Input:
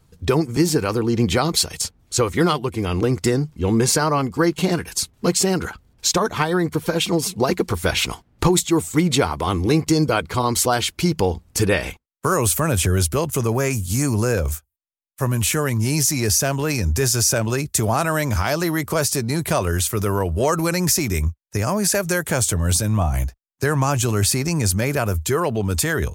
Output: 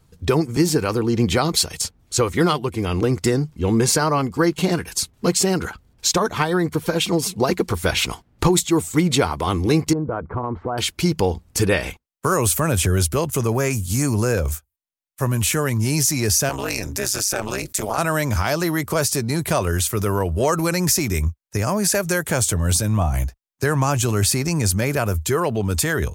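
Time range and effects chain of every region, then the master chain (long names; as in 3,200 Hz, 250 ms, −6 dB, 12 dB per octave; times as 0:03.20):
0:09.93–0:10.78: low-pass filter 1,300 Hz 24 dB per octave + downward compressor 5 to 1, threshold −20 dBFS
0:16.49–0:17.98: high-pass filter 490 Hz 6 dB per octave + amplitude modulation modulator 200 Hz, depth 95% + envelope flattener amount 50%
whole clip: no processing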